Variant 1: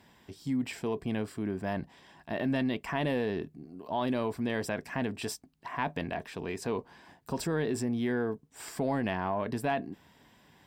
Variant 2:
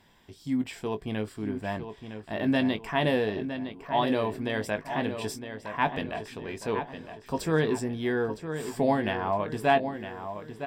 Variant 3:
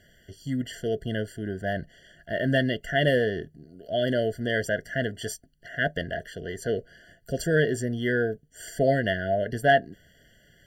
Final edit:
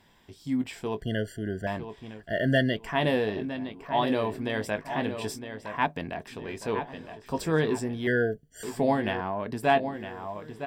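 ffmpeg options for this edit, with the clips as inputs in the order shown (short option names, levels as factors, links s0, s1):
-filter_complex "[2:a]asplit=3[s0][s1][s2];[0:a]asplit=2[s3][s4];[1:a]asplit=6[s5][s6][s7][s8][s9][s10];[s5]atrim=end=1.022[s11];[s0]atrim=start=1.018:end=1.672[s12];[s6]atrim=start=1.668:end=2.31[s13];[s1]atrim=start=2.07:end=2.93[s14];[s7]atrim=start=2.69:end=5.862[s15];[s3]atrim=start=5.858:end=6.272[s16];[s8]atrim=start=6.268:end=8.072[s17];[s2]atrim=start=8.068:end=8.632[s18];[s9]atrim=start=8.628:end=9.212[s19];[s4]atrim=start=9.208:end=9.632[s20];[s10]atrim=start=9.628[s21];[s11][s12]acrossfade=d=0.004:c1=hsin:c2=hsin[s22];[s22][s13]acrossfade=d=0.004:c1=hsin:c2=hsin[s23];[s23][s14]acrossfade=d=0.24:c1=tri:c2=tri[s24];[s24][s15]acrossfade=d=0.24:c1=tri:c2=tri[s25];[s25][s16]acrossfade=d=0.004:c1=hsin:c2=hsin[s26];[s26][s17]acrossfade=d=0.004:c1=hsin:c2=hsin[s27];[s27][s18]acrossfade=d=0.004:c1=hsin:c2=hsin[s28];[s28][s19]acrossfade=d=0.004:c1=hsin:c2=hsin[s29];[s29][s20]acrossfade=d=0.004:c1=hsin:c2=hsin[s30];[s30][s21]acrossfade=d=0.004:c1=hsin:c2=hsin"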